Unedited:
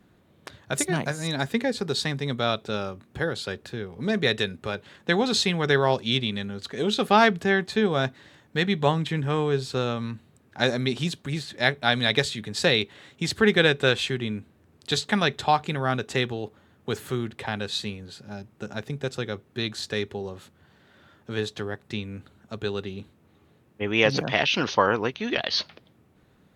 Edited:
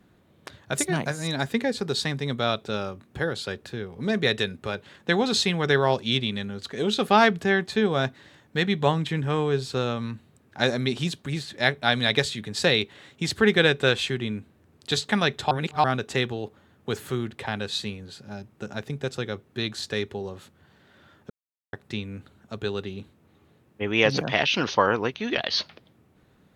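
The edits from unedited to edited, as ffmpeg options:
-filter_complex "[0:a]asplit=5[s0][s1][s2][s3][s4];[s0]atrim=end=15.512[s5];[s1]atrim=start=15.508:end=15.842,asetpts=PTS-STARTPTS,areverse[s6];[s2]atrim=start=15.838:end=21.3,asetpts=PTS-STARTPTS,afade=t=out:st=5.458:d=0.004:c=hsin[s7];[s3]atrim=start=21.3:end=21.73,asetpts=PTS-STARTPTS,volume=0[s8];[s4]atrim=start=21.73,asetpts=PTS-STARTPTS,afade=t=in:d=0.004:c=hsin[s9];[s5][s6]acrossfade=d=0.004:c1=hsin:c2=hsin[s10];[s7][s8][s9]concat=n=3:v=0:a=1[s11];[s10][s11]acrossfade=d=0.004:c1=hsin:c2=hsin"

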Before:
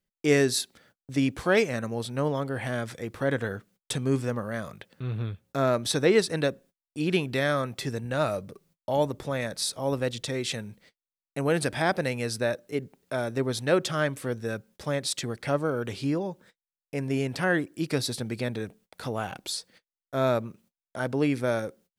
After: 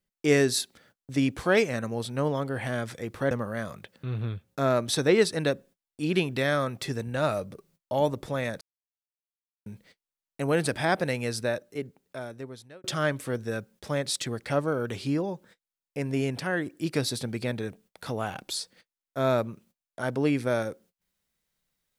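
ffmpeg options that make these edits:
-filter_complex "[0:a]asplit=7[s0][s1][s2][s3][s4][s5][s6];[s0]atrim=end=3.312[s7];[s1]atrim=start=4.278:end=9.58,asetpts=PTS-STARTPTS,afade=t=out:st=5.298:d=0.004:c=hsin[s8];[s2]atrim=start=9.58:end=10.63,asetpts=PTS-STARTPTS,volume=0[s9];[s3]atrim=start=10.63:end=13.81,asetpts=PTS-STARTPTS,afade=t=in:d=0.004:c=hsin,afade=t=out:st=1.61:d=1.57[s10];[s4]atrim=start=13.81:end=17.372,asetpts=PTS-STARTPTS,afade=t=in:d=0.004:c=hsin[s11];[s5]atrim=start=17.368:end=17.632,asetpts=PTS-STARTPTS,volume=0.631[s12];[s6]atrim=start=17.628[s13];[s8][s9][s10][s11]concat=n=4:v=0:a=1[s14];[s7][s14]acrossfade=d=0.004:c1=hsin:c2=hsin[s15];[s15][s12]acrossfade=d=0.004:c1=hsin:c2=hsin[s16];[s16][s13]acrossfade=d=0.004:c1=hsin:c2=hsin"

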